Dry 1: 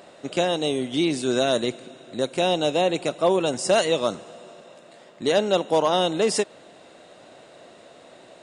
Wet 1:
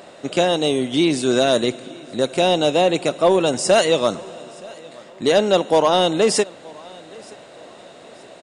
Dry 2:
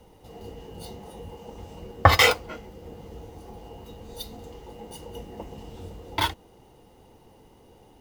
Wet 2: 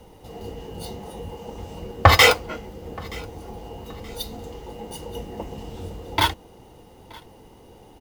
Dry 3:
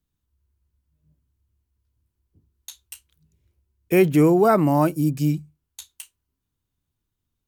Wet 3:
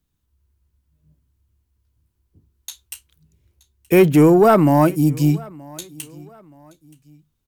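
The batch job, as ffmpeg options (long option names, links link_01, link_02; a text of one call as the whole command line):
ffmpeg -i in.wav -af "acontrast=65,aecho=1:1:925|1850:0.0631|0.0227,volume=-1dB" out.wav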